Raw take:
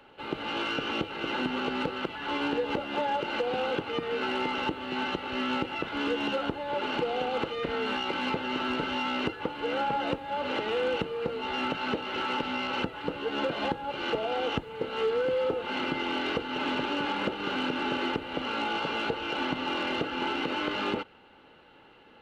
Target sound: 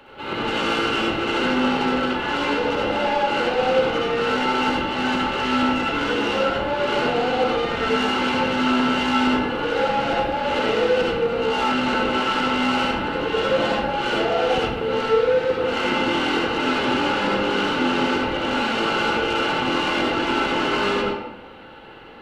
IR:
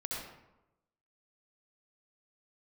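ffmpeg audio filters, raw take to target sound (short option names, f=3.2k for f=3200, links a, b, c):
-filter_complex "[0:a]asplit=2[a][b];[b]alimiter=limit=-23dB:level=0:latency=1,volume=0dB[c];[a][c]amix=inputs=2:normalize=0,asoftclip=type=tanh:threshold=-23dB[d];[1:a]atrim=start_sample=2205[e];[d][e]afir=irnorm=-1:irlink=0,volume=5dB"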